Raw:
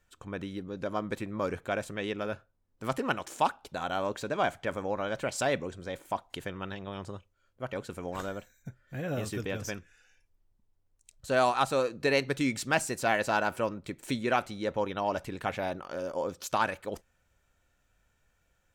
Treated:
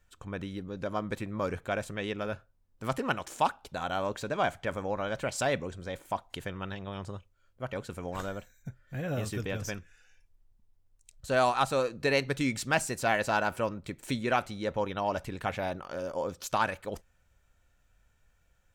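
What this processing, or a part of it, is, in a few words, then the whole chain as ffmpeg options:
low shelf boost with a cut just above: -af "lowshelf=f=92:g=7,equalizer=f=330:t=o:w=0.88:g=-2.5"

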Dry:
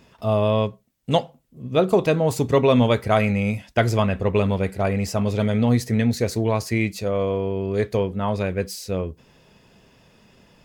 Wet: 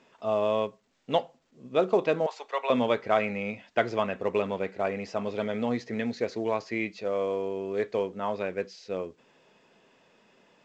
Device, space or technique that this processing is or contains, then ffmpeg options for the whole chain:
telephone: -filter_complex "[0:a]asettb=1/sr,asplit=3[a][b][c];[a]atrim=end=2.264[d];[b]atrim=start=2.26:end=2.7,asetpts=PTS-STARTPTS,afade=t=in:d=0.004:c=qsin,afade=t=out:st=0.436:d=0.004:c=qsin,highpass=f=660:w=0.5412,highpass=f=660:w=1.3066[e];[c]atrim=start=2.696[f];[d][e]acrossfade=d=0.004:c1=hsin:c2=qsin[g];[g][f]acrossfade=d=0.004:c1=qsin:c2=hsin,highpass=300,lowpass=3.3k,volume=-4.5dB" -ar 16000 -c:a pcm_alaw

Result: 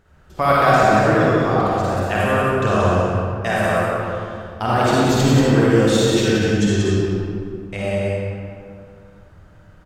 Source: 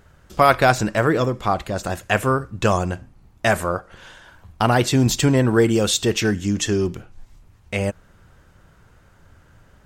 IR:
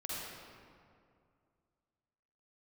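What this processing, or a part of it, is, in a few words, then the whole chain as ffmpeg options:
swimming-pool hall: -filter_complex "[1:a]atrim=start_sample=2205[a];[0:a][a]afir=irnorm=-1:irlink=0,highshelf=f=4.5k:g=-5,aecho=1:1:182:0.596"

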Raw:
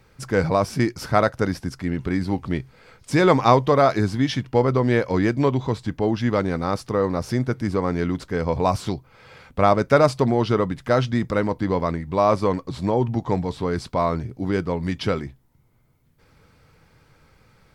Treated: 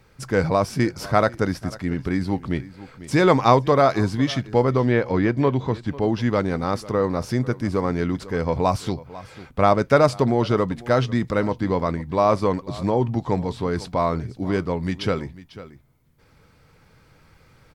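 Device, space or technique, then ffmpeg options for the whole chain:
ducked delay: -filter_complex "[0:a]asettb=1/sr,asplit=3[a][b][c];[a]atrim=end=4.854[d];[b]atrim=start=4.85:end=5.87,asetpts=PTS-STARTPTS,afade=t=in:d=0.004:c=qsin,afade=t=out:st=1.016:d=0.004:c=qsin,acrossover=split=4100[e][f];[f]acompressor=threshold=-57dB:ratio=4:attack=1:release=60[g];[e][g]amix=inputs=2:normalize=0[h];[c]atrim=start=5.866[i];[d][h]acrossfade=d=0.004:c1=hsin:c2=qsin[j];[j][i]acrossfade=d=0.004:c1=qsin:c2=hsin,asplit=3[k][l][m];[l]adelay=496,volume=-2dB[n];[m]apad=whole_len=804339[o];[n][o]sidechaincompress=threshold=-40dB:ratio=3:attack=12:release=1450[p];[k][p]amix=inputs=2:normalize=0"

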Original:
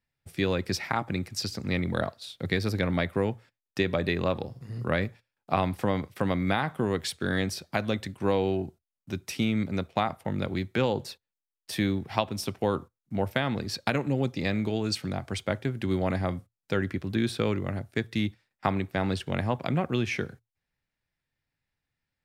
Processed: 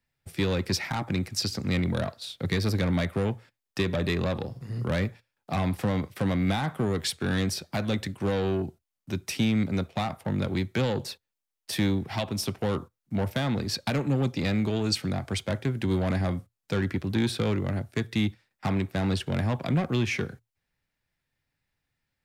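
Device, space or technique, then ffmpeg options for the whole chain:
one-band saturation: -filter_complex "[0:a]acrossover=split=220|3400[a][b][c];[b]asoftclip=type=tanh:threshold=-29.5dB[d];[a][d][c]amix=inputs=3:normalize=0,volume=3.5dB"

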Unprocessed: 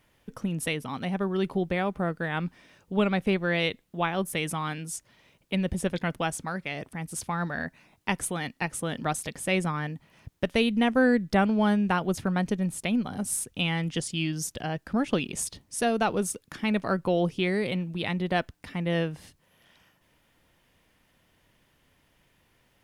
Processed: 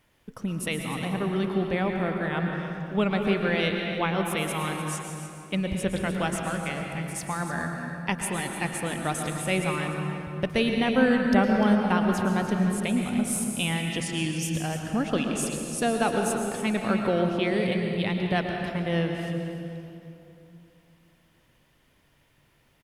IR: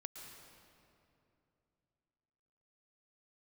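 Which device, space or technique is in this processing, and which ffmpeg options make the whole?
cave: -filter_complex "[0:a]aecho=1:1:299:0.251[a];[1:a]atrim=start_sample=2205[b];[a][b]afir=irnorm=-1:irlink=0,volume=5dB"

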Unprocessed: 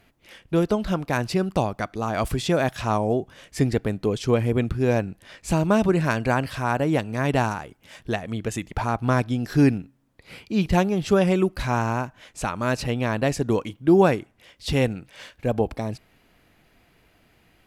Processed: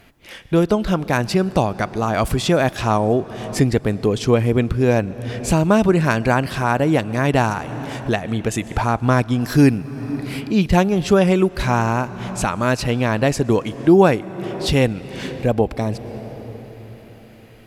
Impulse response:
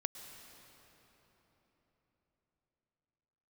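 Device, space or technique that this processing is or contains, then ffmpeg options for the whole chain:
ducked reverb: -filter_complex "[0:a]asplit=3[a][b][c];[1:a]atrim=start_sample=2205[d];[b][d]afir=irnorm=-1:irlink=0[e];[c]apad=whole_len=778823[f];[e][f]sidechaincompress=threshold=-29dB:ratio=8:attack=10:release=390,volume=0dB[g];[a][g]amix=inputs=2:normalize=0,asettb=1/sr,asplit=3[h][i][j];[h]atrim=end=9.414[k];[i]atrim=start=9.41:end=10.41,asetpts=PTS-STARTPTS,afade=t=in:d=0.004:c=qsin,afade=t=out:st=0.996:d=0.004:c=qsin,highshelf=f=7.2k:g=8.5[l];[j]atrim=start=10.406[m];[k][l]acrossfade=d=0.004:c1=hsin:c2=qsin[n];[n][m]acrossfade=d=0.004:c1=qsin:c2=hsin,volume=3.5dB"

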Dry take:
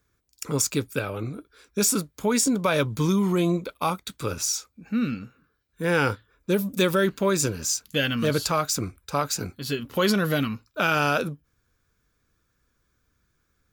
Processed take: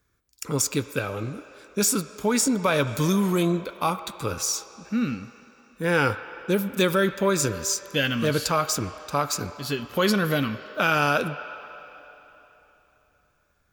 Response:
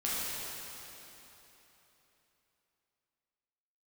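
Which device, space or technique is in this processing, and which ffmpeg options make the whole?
filtered reverb send: -filter_complex "[0:a]asplit=2[a][b];[b]highpass=530,lowpass=3.2k[c];[1:a]atrim=start_sample=2205[d];[c][d]afir=irnorm=-1:irlink=0,volume=-15.5dB[e];[a][e]amix=inputs=2:normalize=0,asettb=1/sr,asplit=3[f][g][h];[f]atrim=end=2.874[i];[g]atrim=start=2.87:end=3.43,asetpts=PTS-STARTPTS,afade=t=in:d=0.004:c=qsin,afade=t=out:st=0.556:d=0.004:c=qsin,highshelf=f=6k:g=9[j];[h]atrim=start=3.426[k];[i][j]acrossfade=d=0.004:c1=hsin:c2=qsin[l];[l][k]acrossfade=d=0.004:c1=qsin:c2=hsin"

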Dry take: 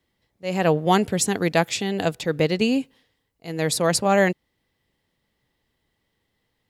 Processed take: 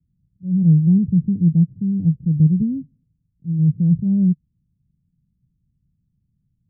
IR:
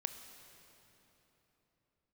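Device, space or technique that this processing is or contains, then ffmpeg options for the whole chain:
the neighbour's flat through the wall: -af "lowpass=f=180:w=0.5412,lowpass=f=180:w=1.3066,equalizer=f=160:t=o:w=0.77:g=7,volume=8.5dB"

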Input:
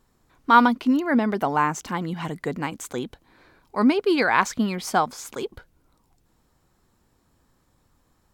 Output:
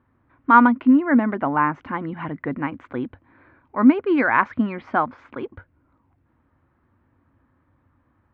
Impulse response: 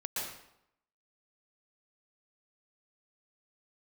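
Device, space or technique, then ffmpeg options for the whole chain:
bass cabinet: -af "highpass=68,equalizer=f=93:t=q:w=4:g=7,equalizer=f=180:t=q:w=4:g=-8,equalizer=f=270:t=q:w=4:g=5,equalizer=f=430:t=q:w=4:g=-8,equalizer=f=760:t=q:w=4:g=-5,lowpass=f=2.1k:w=0.5412,lowpass=f=2.1k:w=1.3066,volume=3dB"

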